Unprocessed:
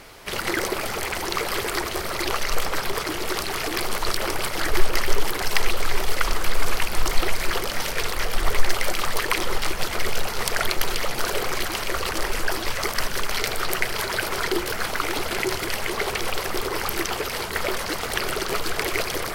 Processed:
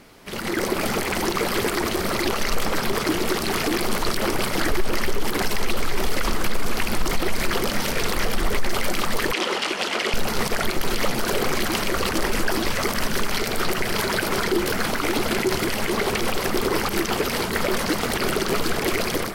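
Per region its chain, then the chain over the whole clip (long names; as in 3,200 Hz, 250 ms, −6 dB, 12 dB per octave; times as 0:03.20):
0:09.33–0:10.14: band-pass filter 360–7,400 Hz + parametric band 2,900 Hz +6 dB 0.44 octaves
whole clip: parametric band 220 Hz +11.5 dB 1.2 octaves; brickwall limiter −14 dBFS; automatic gain control gain up to 9.5 dB; level −6.5 dB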